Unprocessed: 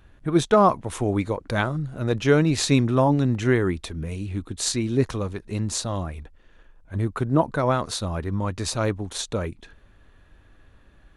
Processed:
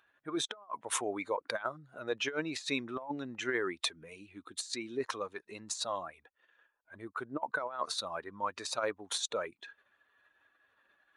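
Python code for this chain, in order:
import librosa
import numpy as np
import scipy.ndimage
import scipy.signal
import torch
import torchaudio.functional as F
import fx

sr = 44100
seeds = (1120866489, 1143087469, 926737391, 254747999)

y = fx.spec_expand(x, sr, power=1.5)
y = scipy.signal.sosfilt(scipy.signal.butter(2, 950.0, 'highpass', fs=sr, output='sos'), y)
y = fx.over_compress(y, sr, threshold_db=-34.0, ratio=-0.5)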